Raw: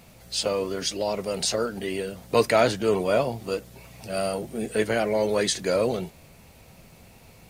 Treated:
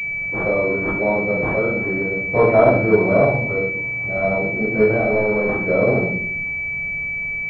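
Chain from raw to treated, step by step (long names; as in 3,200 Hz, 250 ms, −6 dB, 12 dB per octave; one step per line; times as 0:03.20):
0:04.99–0:05.54: gain into a clipping stage and back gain 24 dB
convolution reverb RT60 0.65 s, pre-delay 10 ms, DRR −4.5 dB
switching amplifier with a slow clock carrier 2,300 Hz
level −1.5 dB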